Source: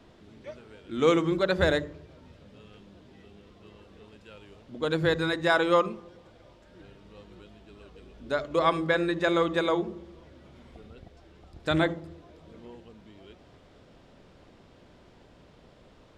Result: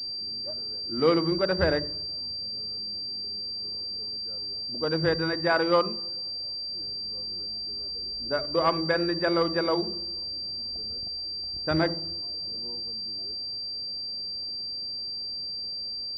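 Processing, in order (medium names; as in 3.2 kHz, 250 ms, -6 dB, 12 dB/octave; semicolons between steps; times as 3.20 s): level-controlled noise filter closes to 710 Hz, open at -20.5 dBFS; class-D stage that switches slowly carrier 4.7 kHz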